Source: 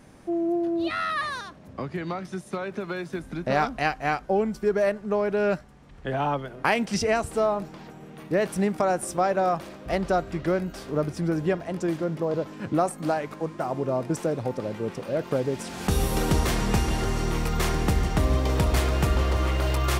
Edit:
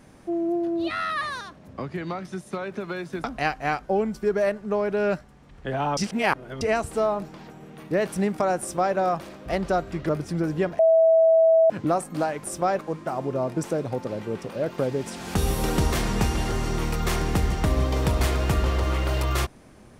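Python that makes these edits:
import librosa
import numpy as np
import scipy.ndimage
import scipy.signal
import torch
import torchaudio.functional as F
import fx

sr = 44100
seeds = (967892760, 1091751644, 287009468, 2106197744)

y = fx.edit(x, sr, fx.cut(start_s=3.24, length_s=0.4),
    fx.reverse_span(start_s=6.37, length_s=0.64),
    fx.duplicate(start_s=9.0, length_s=0.35, to_s=13.32),
    fx.cut(start_s=10.49, length_s=0.48),
    fx.bleep(start_s=11.67, length_s=0.91, hz=651.0, db=-13.5), tone=tone)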